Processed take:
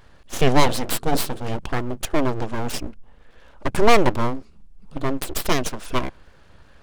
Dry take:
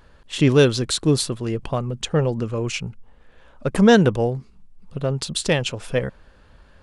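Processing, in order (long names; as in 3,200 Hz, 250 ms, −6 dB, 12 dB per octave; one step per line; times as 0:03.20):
0:00.60–0:01.59: mains-hum notches 50/100/150/200/250/300/350/400/450 Hz
full-wave rectification
level +2 dB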